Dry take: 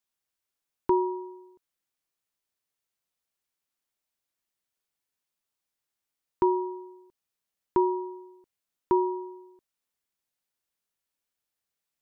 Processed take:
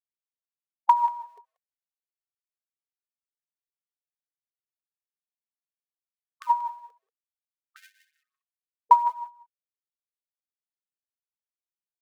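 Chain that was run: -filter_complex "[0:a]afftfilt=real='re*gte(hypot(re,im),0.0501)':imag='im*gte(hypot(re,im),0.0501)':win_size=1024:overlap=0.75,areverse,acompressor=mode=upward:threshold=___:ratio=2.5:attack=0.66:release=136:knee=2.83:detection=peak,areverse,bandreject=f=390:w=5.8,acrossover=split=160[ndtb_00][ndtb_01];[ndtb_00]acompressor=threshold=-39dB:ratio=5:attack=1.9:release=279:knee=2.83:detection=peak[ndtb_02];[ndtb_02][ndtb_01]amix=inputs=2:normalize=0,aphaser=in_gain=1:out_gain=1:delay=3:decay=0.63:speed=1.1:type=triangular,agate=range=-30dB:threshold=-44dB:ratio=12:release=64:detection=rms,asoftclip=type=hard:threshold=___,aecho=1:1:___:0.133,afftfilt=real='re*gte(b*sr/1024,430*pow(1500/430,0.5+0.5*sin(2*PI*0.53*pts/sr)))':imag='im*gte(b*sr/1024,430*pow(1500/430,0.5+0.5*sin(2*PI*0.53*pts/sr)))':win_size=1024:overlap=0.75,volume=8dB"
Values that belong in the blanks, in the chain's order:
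-37dB, -9.5dB, 185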